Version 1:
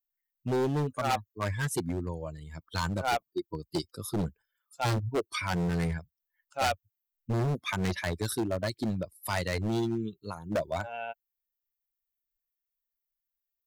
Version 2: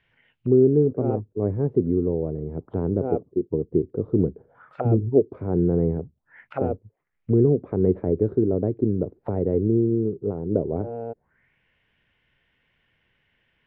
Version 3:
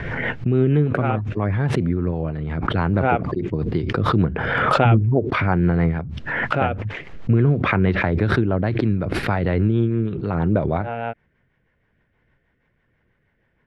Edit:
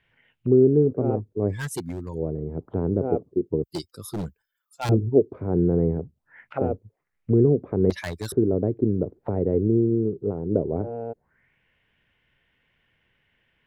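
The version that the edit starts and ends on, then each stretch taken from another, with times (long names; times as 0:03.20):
2
0:01.53–0:02.17: punch in from 1, crossfade 0.10 s
0:03.64–0:04.89: punch in from 1
0:07.90–0:08.32: punch in from 1
not used: 3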